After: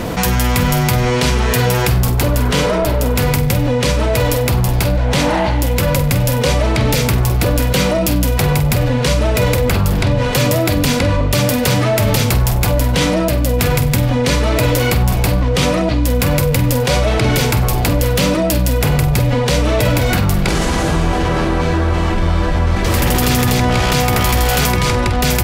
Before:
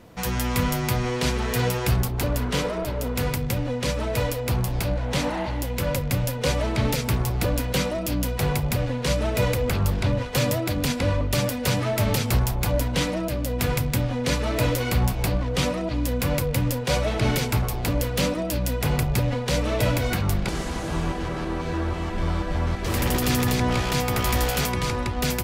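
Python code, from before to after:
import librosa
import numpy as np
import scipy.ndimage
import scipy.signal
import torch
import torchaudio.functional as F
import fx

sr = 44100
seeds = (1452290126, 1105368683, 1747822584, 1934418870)

p1 = x + fx.room_flutter(x, sr, wall_m=8.1, rt60_s=0.28, dry=0)
p2 = fx.env_flatten(p1, sr, amount_pct=70)
y = F.gain(torch.from_numpy(p2), 4.5).numpy()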